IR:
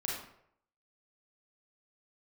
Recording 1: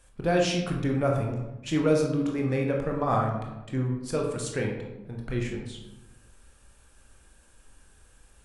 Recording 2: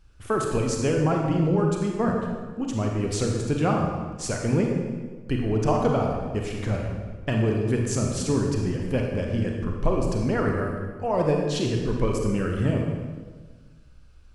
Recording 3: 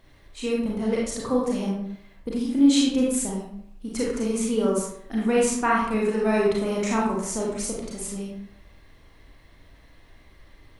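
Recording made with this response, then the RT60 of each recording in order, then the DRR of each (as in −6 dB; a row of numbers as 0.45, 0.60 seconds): 3; 1.0, 1.5, 0.70 seconds; 0.0, 0.5, −4.0 decibels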